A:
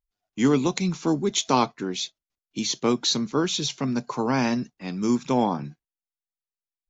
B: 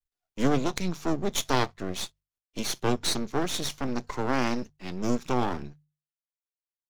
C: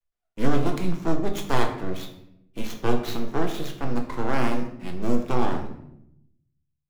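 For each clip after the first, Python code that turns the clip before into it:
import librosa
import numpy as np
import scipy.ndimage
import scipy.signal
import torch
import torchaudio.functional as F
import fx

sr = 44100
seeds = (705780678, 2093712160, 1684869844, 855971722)

y1 = np.maximum(x, 0.0)
y1 = fx.hum_notches(y1, sr, base_hz=50, count=3)
y2 = scipy.ndimage.median_filter(y1, 9, mode='constant')
y2 = fx.room_shoebox(y2, sr, seeds[0], volume_m3=190.0, walls='mixed', distance_m=0.71)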